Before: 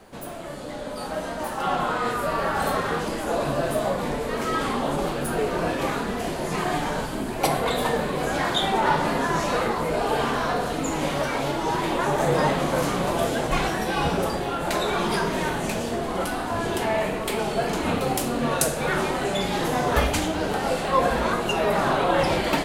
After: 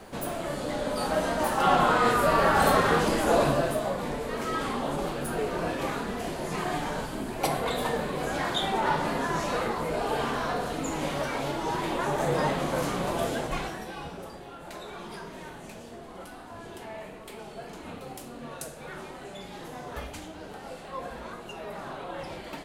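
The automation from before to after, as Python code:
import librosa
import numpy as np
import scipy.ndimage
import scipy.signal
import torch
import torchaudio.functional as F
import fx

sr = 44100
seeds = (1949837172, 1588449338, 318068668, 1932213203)

y = fx.gain(x, sr, db=fx.line((3.41, 3.0), (3.81, -5.0), (13.35, -5.0), (14.11, -16.5)))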